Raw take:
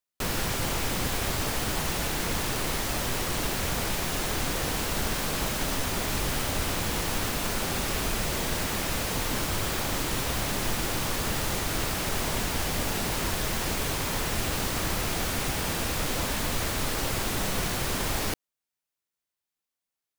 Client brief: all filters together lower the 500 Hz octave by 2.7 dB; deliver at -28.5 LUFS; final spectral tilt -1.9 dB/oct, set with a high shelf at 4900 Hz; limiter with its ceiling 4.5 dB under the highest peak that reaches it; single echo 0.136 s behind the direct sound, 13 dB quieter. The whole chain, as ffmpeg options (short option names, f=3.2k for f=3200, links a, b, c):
-af "equalizer=f=500:t=o:g=-3.5,highshelf=f=4.9k:g=7,alimiter=limit=-17.5dB:level=0:latency=1,aecho=1:1:136:0.224,volume=-2.5dB"